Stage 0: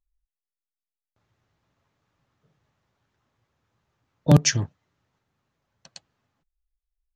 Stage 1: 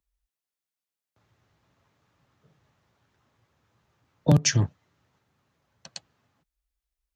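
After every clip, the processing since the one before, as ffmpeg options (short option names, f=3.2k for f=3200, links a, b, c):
-filter_complex "[0:a]acompressor=threshold=-17dB:ratio=6,highpass=48,acrossover=split=160[a][b];[b]acompressor=threshold=-25dB:ratio=2.5[c];[a][c]amix=inputs=2:normalize=0,volume=4.5dB"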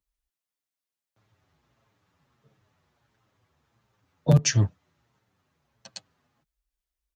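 -filter_complex "[0:a]asplit=2[a][b];[b]adelay=7.4,afreqshift=-1.5[c];[a][c]amix=inputs=2:normalize=1,volume=2dB"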